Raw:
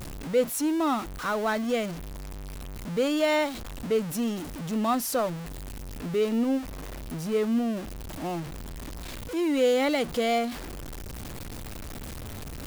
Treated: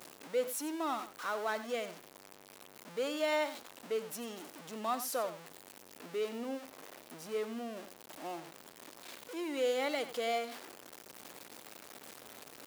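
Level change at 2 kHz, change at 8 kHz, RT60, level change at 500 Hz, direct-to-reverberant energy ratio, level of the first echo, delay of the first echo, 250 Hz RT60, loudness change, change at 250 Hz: -7.5 dB, -7.5 dB, no reverb, -9.0 dB, no reverb, -13.0 dB, 92 ms, no reverb, -9.5 dB, -15.5 dB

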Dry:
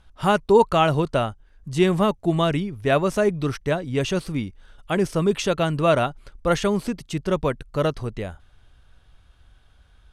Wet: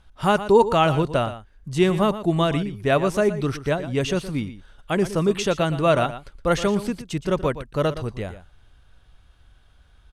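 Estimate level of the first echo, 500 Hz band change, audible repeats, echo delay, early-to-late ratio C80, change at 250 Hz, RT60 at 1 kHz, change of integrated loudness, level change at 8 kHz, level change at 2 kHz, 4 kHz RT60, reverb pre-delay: -13.0 dB, 0.0 dB, 1, 118 ms, no reverb, 0.0 dB, no reverb, 0.0 dB, 0.0 dB, 0.0 dB, no reverb, no reverb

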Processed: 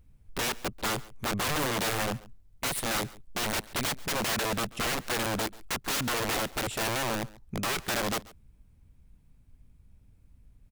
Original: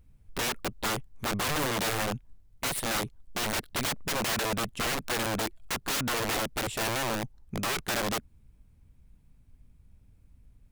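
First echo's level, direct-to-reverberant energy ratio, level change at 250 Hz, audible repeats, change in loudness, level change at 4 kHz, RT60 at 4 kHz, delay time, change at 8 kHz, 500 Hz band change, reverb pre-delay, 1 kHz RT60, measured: -21.0 dB, no reverb, 0.0 dB, 1, 0.0 dB, 0.0 dB, no reverb, 138 ms, 0.0 dB, 0.0 dB, no reverb, no reverb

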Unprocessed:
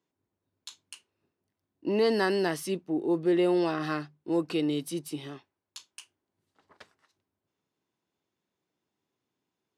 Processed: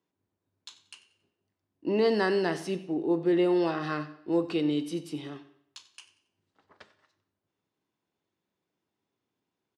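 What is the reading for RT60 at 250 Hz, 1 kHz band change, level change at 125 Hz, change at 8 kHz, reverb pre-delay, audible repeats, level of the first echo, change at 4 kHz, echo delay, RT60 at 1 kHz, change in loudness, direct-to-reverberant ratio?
0.75 s, 0.0 dB, 0.0 dB, -6.5 dB, 10 ms, 2, -17.5 dB, -1.5 dB, 92 ms, 0.70 s, +0.5 dB, 10.5 dB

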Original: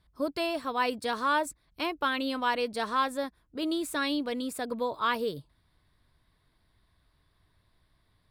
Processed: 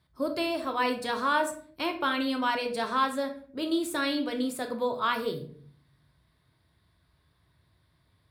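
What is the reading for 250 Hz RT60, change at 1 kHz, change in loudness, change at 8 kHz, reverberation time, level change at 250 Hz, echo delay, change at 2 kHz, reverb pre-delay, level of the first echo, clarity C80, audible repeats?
0.85 s, +1.0 dB, +1.0 dB, +1.0 dB, 0.50 s, +2.0 dB, no echo, +1.0 dB, 3 ms, no echo, 14.5 dB, no echo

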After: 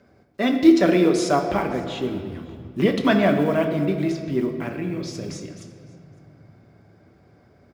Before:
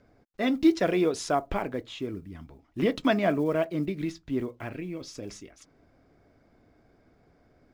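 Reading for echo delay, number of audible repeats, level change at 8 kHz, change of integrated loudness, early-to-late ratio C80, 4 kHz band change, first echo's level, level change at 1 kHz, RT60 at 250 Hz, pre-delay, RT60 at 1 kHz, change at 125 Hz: 558 ms, 1, +6.0 dB, +7.0 dB, 8.0 dB, +6.5 dB, -24.5 dB, +6.0 dB, 4.0 s, 5 ms, 1.9 s, +8.5 dB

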